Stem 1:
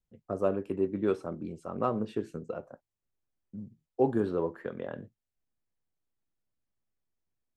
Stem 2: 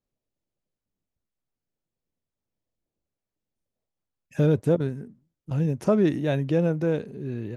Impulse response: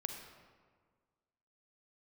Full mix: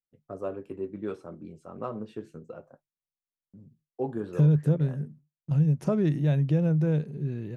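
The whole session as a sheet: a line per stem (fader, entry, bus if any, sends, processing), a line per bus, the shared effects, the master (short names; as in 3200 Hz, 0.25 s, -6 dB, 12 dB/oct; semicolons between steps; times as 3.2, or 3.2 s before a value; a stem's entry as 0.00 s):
-1.5 dB, 0.00 s, no send, gate with hold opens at -49 dBFS; bell 150 Hz -8.5 dB 0.55 oct; flange 0.31 Hz, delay 6.2 ms, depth 4.4 ms, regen -51%
-4.5 dB, 0.00 s, no send, gate with hold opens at -43 dBFS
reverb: off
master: bell 150 Hz +15 dB 0.33 oct; compressor 2:1, threshold -22 dBFS, peak gain reduction 7 dB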